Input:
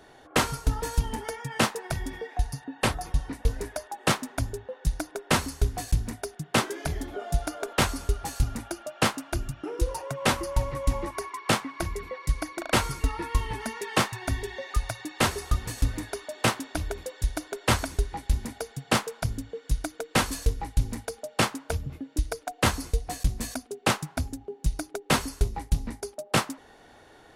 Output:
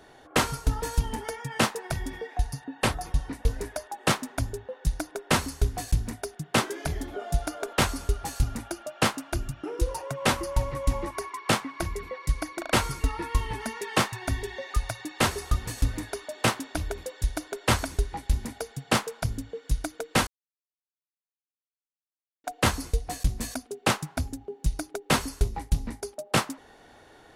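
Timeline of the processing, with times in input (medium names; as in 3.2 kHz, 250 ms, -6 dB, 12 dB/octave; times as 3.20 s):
20.27–22.44 s: mute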